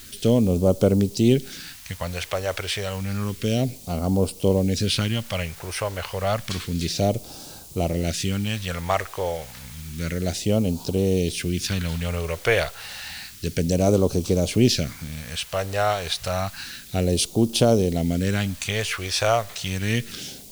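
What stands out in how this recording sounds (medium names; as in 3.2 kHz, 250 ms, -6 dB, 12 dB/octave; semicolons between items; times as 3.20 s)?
a quantiser's noise floor 8-bit, dither triangular; phasing stages 2, 0.3 Hz, lowest notch 220–1800 Hz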